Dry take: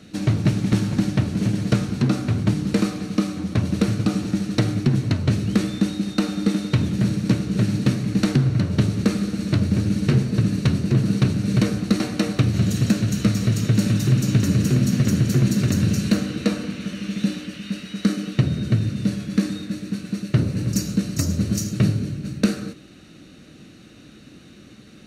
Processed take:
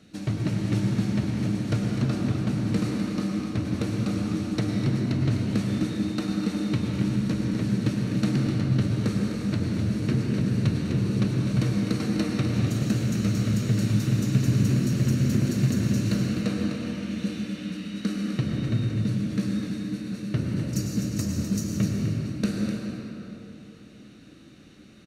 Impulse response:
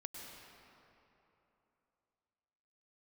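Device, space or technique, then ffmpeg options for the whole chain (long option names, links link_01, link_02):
cave: -filter_complex "[0:a]aecho=1:1:253:0.355[link_01];[1:a]atrim=start_sample=2205[link_02];[link_01][link_02]afir=irnorm=-1:irlink=0,volume=-2.5dB"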